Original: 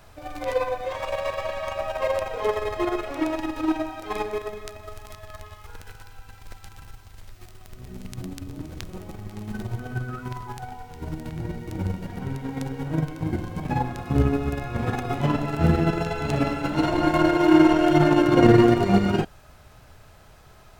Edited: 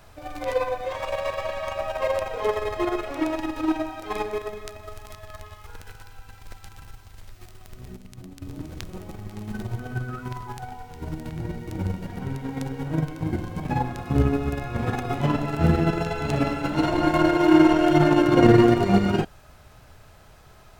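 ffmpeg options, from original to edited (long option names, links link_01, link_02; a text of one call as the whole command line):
ffmpeg -i in.wav -filter_complex "[0:a]asplit=3[link_01][link_02][link_03];[link_01]atrim=end=7.962[link_04];[link_02]atrim=start=7.958:end=8.422,asetpts=PTS-STARTPTS,volume=-7.5dB[link_05];[link_03]atrim=start=8.418[link_06];[link_04][link_05]acrossfade=duration=0.004:curve1=hsin:curve2=hsin[link_07];[link_07][link_06]acrossfade=duration=0.004:curve1=hsin:curve2=hsin" out.wav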